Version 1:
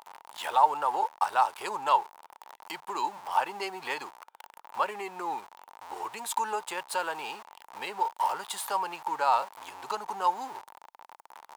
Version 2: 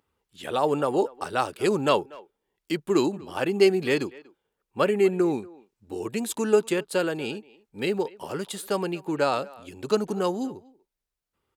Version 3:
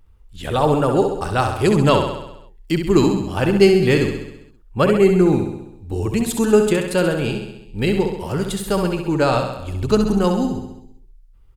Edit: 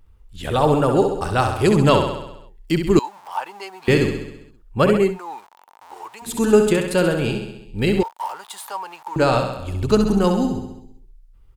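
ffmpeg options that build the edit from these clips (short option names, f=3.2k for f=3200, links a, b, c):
-filter_complex "[0:a]asplit=3[a][b][c];[2:a]asplit=4[d][e][f][g];[d]atrim=end=2.992[h];[a]atrim=start=2.988:end=3.882[i];[e]atrim=start=3.878:end=5.19[j];[b]atrim=start=4.95:end=6.45[k];[f]atrim=start=6.21:end=8.032[l];[c]atrim=start=8.028:end=9.162[m];[g]atrim=start=9.158[n];[h][i]acrossfade=d=0.004:c1=hsin:c2=hsin[o];[o][j]acrossfade=d=0.004:c1=hsin:c2=hsin[p];[p][k]acrossfade=d=0.24:c1=tri:c2=tri[q];[q][l]acrossfade=d=0.24:c1=tri:c2=tri[r];[r][m]acrossfade=d=0.004:c1=hsin:c2=hsin[s];[s][n]acrossfade=d=0.004:c1=hsin:c2=hsin"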